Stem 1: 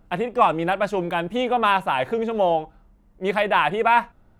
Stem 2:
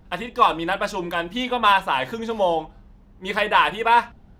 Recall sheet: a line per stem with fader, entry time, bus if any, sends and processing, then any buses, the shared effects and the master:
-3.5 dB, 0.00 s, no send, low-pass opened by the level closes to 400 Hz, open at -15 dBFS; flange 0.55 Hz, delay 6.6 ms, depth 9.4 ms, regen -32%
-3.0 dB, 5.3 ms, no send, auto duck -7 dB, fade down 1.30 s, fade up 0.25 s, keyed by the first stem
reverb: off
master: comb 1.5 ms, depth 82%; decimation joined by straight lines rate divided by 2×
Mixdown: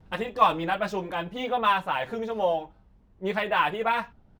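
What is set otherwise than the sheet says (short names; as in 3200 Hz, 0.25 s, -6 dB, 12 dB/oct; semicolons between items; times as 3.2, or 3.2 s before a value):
stem 2: polarity flipped; master: missing comb 1.5 ms, depth 82%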